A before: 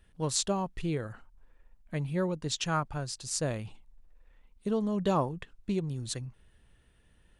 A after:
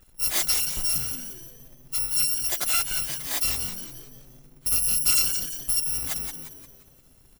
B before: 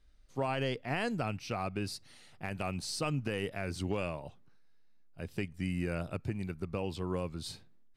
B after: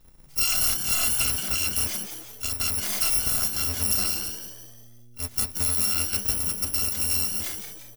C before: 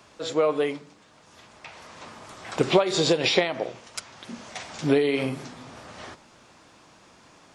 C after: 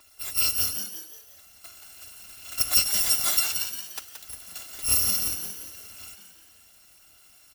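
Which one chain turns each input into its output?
bit-reversed sample order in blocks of 256 samples; frequency-shifting echo 175 ms, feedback 44%, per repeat +120 Hz, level -7.5 dB; normalise loudness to -23 LUFS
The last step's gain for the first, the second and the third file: +5.5 dB, +9.5 dB, -2.5 dB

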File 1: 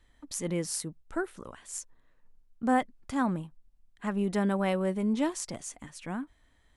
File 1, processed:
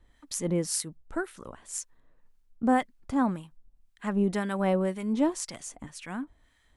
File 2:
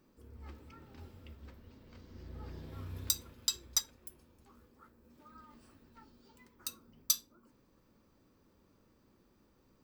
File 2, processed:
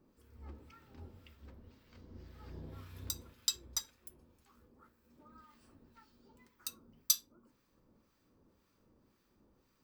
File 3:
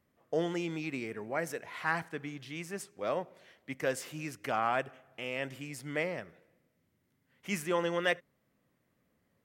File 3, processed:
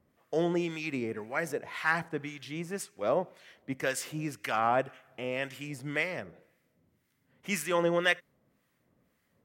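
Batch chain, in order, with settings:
harmonic tremolo 1.9 Hz, depth 70%, crossover 1.1 kHz; peak normalisation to -12 dBFS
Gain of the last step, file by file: +4.5 dB, +0.5 dB, +6.5 dB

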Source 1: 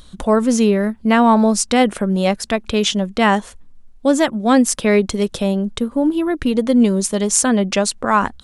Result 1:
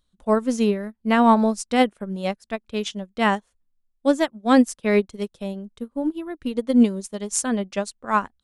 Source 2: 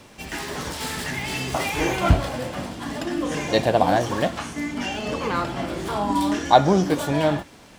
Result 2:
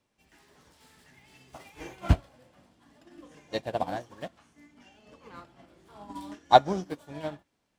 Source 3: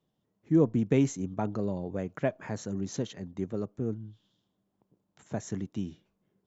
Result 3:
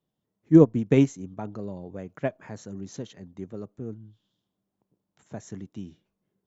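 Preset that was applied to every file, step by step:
upward expansion 2.5:1, over -28 dBFS; peak normalisation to -3 dBFS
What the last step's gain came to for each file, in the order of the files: -1.0 dB, -1.0 dB, +10.0 dB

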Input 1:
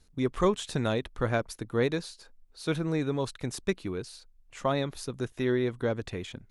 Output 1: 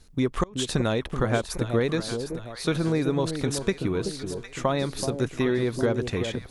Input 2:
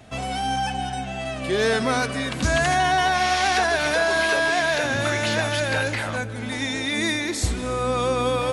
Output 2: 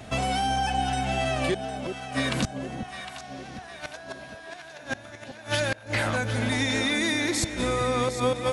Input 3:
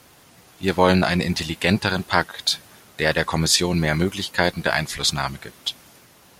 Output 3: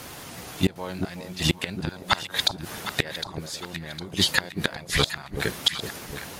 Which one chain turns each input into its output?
inverted gate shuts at -13 dBFS, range -29 dB; compression, threshold -28 dBFS; echo whose repeats swap between lows and highs 379 ms, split 830 Hz, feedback 68%, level -7 dB; normalise loudness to -27 LUFS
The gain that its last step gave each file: +8.0 dB, +5.0 dB, +11.0 dB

